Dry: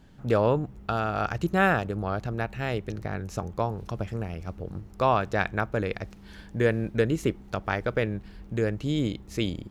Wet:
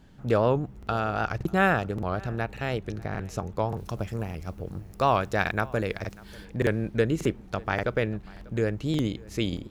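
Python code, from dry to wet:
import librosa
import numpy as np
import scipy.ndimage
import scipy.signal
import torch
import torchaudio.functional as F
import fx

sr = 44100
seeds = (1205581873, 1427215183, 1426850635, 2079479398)

y = fx.high_shelf(x, sr, hz=7700.0, db=11.5, at=(3.74, 6.45))
y = y + 10.0 ** (-23.5 / 20.0) * np.pad(y, (int(593 * sr / 1000.0), 0))[:len(y)]
y = fx.buffer_crackle(y, sr, first_s=0.78, period_s=0.58, block=2048, kind='repeat')
y = fx.record_warp(y, sr, rpm=78.0, depth_cents=100.0)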